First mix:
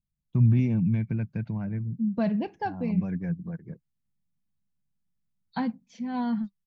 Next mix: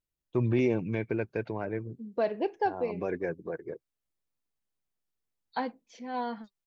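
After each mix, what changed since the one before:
first voice +7.0 dB; master: add resonant low shelf 270 Hz -13.5 dB, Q 3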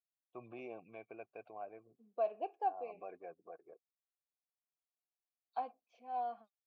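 first voice -3.5 dB; master: add vowel filter a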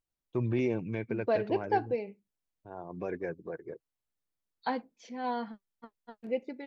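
second voice: entry -0.90 s; master: remove vowel filter a

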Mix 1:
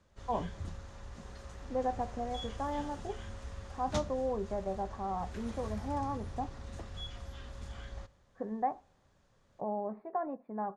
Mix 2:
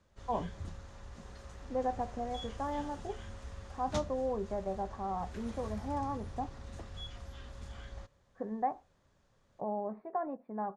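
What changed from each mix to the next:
reverb: off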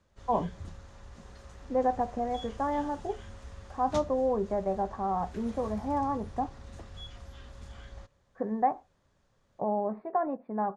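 speech +6.5 dB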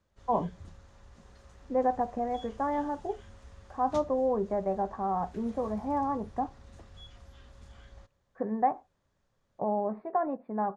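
background -5.5 dB

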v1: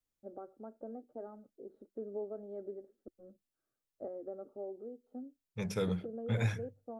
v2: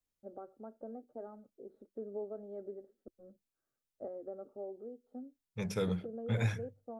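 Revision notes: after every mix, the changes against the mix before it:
first voice: add peaking EQ 320 Hz -3.5 dB 0.44 oct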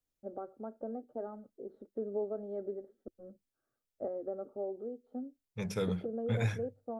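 first voice +5.5 dB

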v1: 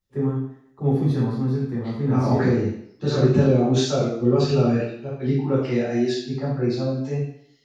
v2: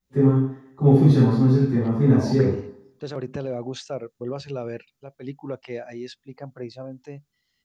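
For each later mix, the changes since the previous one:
first voice: send +6.0 dB; second voice: send off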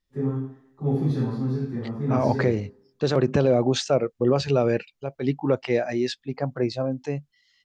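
first voice -9.0 dB; second voice +10.0 dB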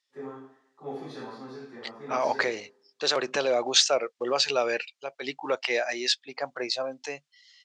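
second voice: add treble shelf 2.3 kHz +12 dB; master: add band-pass 640–7800 Hz

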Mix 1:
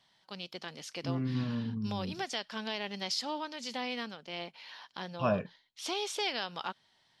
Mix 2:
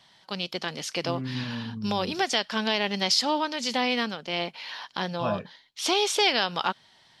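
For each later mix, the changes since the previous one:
first voice +11.0 dB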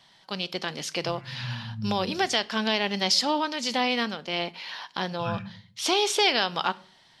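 second voice: add brick-wall FIR band-stop 220–1200 Hz; reverb: on, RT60 0.50 s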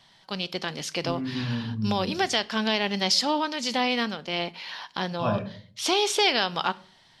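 second voice: remove brick-wall FIR band-stop 220–1200 Hz; master: add bass shelf 110 Hz +6.5 dB

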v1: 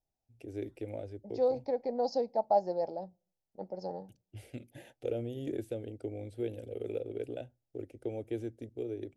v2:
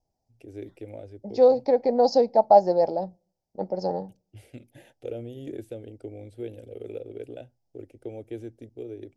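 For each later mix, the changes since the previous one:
second voice +11.5 dB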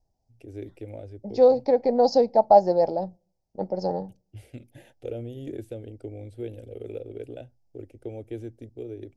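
master: add bass shelf 88 Hz +10.5 dB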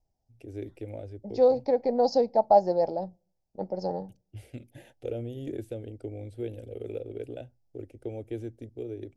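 second voice -4.0 dB

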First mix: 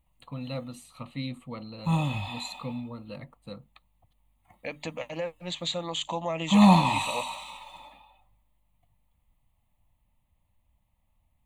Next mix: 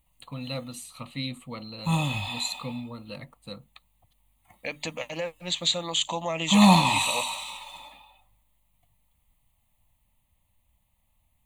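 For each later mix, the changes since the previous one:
master: add treble shelf 2.6 kHz +10.5 dB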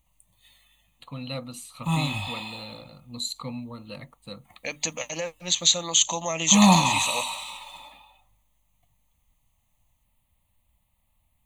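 first voice: entry +0.80 s; second voice: add resonant low-pass 6.3 kHz, resonance Q 8.9; master: add peaking EQ 1.2 kHz +2 dB 0.23 oct

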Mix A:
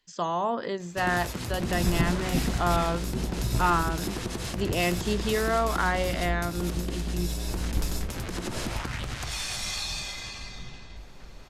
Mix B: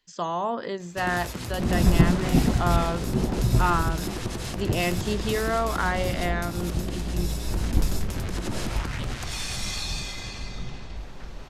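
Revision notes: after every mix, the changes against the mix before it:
second sound +7.5 dB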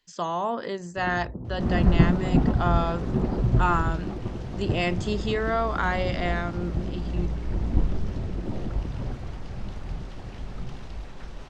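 first sound: add Gaussian low-pass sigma 13 samples

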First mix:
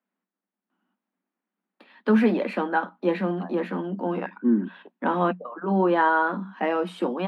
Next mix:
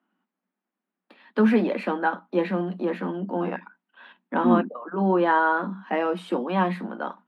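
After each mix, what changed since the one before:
first voice: entry -0.70 s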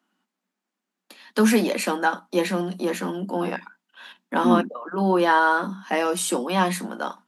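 master: remove distance through air 460 m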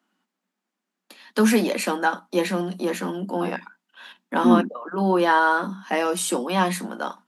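second voice +3.0 dB

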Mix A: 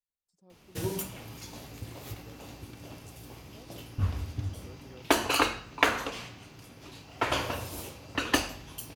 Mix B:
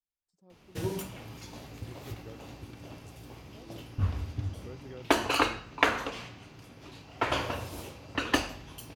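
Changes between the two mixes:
second voice +6.0 dB; master: add treble shelf 6.4 kHz -9 dB

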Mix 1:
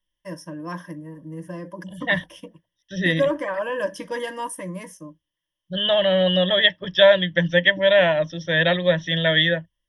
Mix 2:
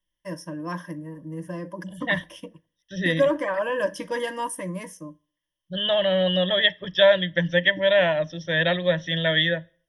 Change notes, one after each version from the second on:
second voice -3.5 dB; reverb: on, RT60 0.45 s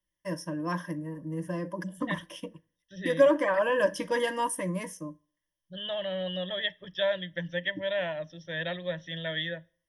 second voice -11.5 dB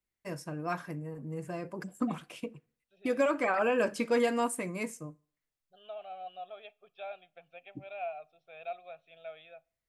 second voice: add vowel filter a; master: remove rippled EQ curve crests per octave 1.2, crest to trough 17 dB

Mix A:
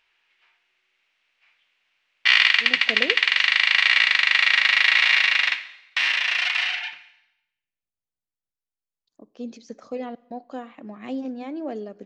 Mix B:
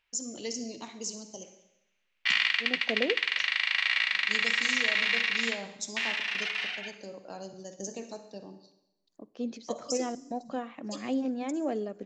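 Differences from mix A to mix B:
first voice: unmuted; background -9.5 dB

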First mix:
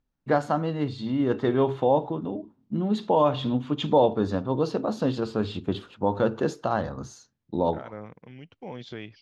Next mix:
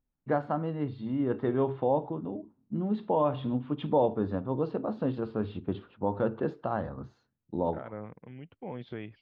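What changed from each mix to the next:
first voice -4.0 dB; master: add distance through air 450 m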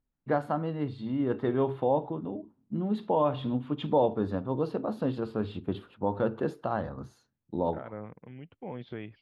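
first voice: remove distance through air 190 m

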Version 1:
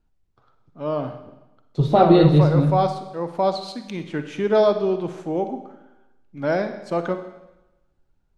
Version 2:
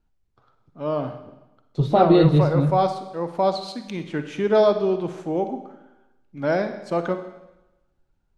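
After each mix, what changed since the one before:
second voice: send -8.5 dB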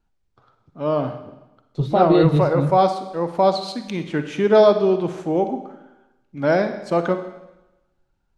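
first voice +4.0 dB; second voice: send off

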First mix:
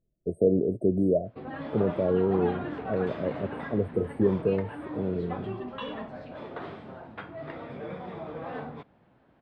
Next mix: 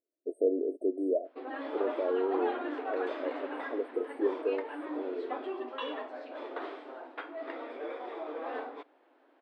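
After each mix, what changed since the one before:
speech -4.5 dB; master: add brick-wall FIR high-pass 260 Hz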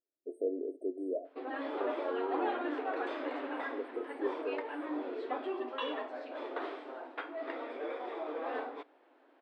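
speech -7.5 dB; reverb: on, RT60 0.40 s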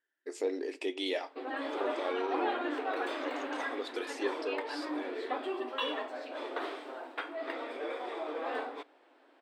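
speech: remove brick-wall FIR band-stop 720–8200 Hz; master: remove tape spacing loss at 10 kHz 20 dB

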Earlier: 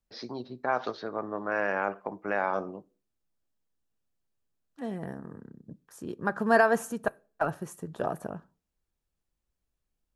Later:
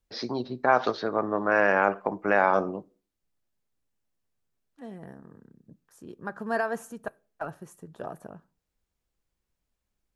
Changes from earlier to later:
first voice +7.0 dB; second voice -6.5 dB

